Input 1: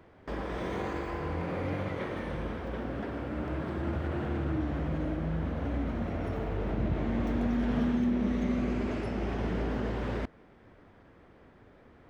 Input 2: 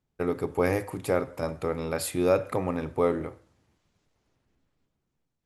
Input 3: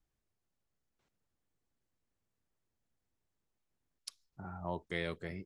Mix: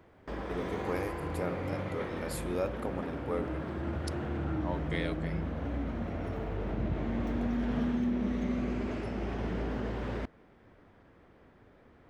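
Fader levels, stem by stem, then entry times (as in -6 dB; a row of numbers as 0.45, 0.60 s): -2.5, -10.0, +1.5 dB; 0.00, 0.30, 0.00 s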